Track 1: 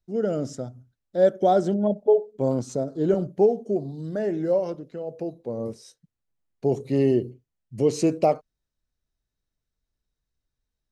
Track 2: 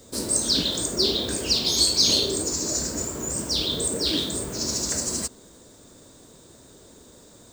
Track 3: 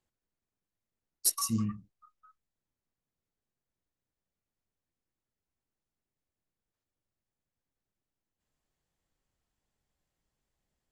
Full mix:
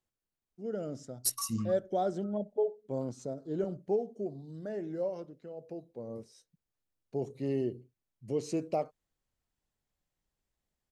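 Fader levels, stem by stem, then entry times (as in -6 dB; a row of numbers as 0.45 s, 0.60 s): -11.5 dB, mute, -3.5 dB; 0.50 s, mute, 0.00 s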